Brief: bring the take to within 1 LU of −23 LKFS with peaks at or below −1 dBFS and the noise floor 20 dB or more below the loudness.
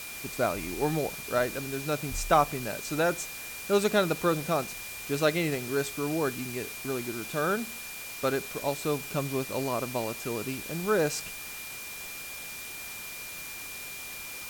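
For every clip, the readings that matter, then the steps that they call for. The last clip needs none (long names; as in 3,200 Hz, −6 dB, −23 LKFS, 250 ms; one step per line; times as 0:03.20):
interfering tone 2,400 Hz; level of the tone −42 dBFS; background noise floor −40 dBFS; target noise floor −51 dBFS; integrated loudness −30.5 LKFS; sample peak −10.5 dBFS; target loudness −23.0 LKFS
→ notch filter 2,400 Hz, Q 30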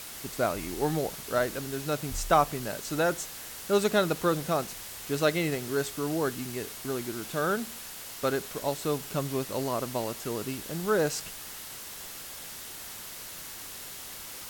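interfering tone none found; background noise floor −42 dBFS; target noise floor −51 dBFS
→ noise reduction from a noise print 9 dB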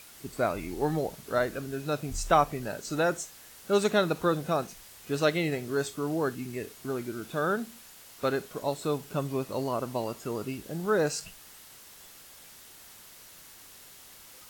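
background noise floor −51 dBFS; integrated loudness −30.0 LKFS; sample peak −10.5 dBFS; target loudness −23.0 LKFS
→ level +7 dB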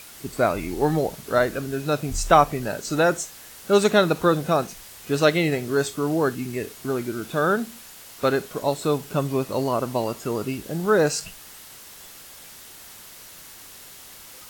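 integrated loudness −23.0 LKFS; sample peak −3.5 dBFS; background noise floor −44 dBFS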